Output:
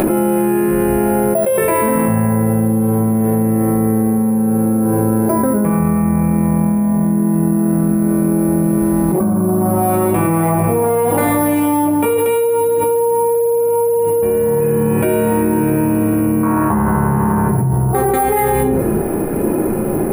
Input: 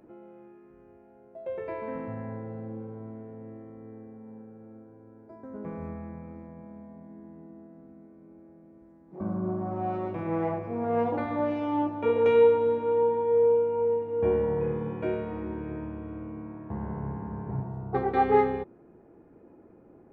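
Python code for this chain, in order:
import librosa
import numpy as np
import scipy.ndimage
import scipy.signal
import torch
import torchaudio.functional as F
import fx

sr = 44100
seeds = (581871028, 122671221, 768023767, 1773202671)

y = np.repeat(scipy.signal.resample_poly(x, 1, 4), 4)[:len(x)]
y = fx.peak_eq(y, sr, hz=1200.0, db=14.5, octaves=1.2, at=(16.43, 17.49))
y = fx.rider(y, sr, range_db=10, speed_s=2.0)
y = fx.high_shelf(y, sr, hz=2700.0, db=8.0)
y = fx.room_shoebox(y, sr, seeds[0], volume_m3=270.0, walls='furnished', distance_m=1.1)
y = fx.env_flatten(y, sr, amount_pct=100)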